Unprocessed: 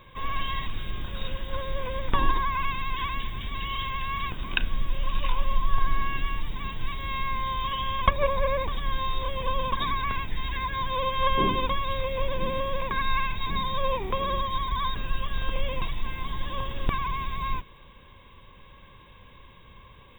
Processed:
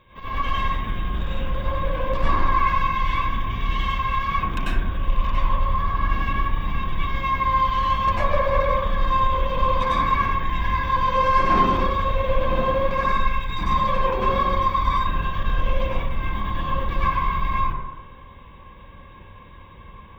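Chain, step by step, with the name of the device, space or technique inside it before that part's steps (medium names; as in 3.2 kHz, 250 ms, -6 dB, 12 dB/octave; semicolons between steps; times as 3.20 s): 13.08–13.49 s: peaking EQ 510 Hz -14 dB 2.8 oct; tube preamp driven hard (valve stage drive 25 dB, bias 0.75; treble shelf 4.7 kHz -6 dB); plate-style reverb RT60 1.1 s, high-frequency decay 0.25×, pre-delay 85 ms, DRR -10 dB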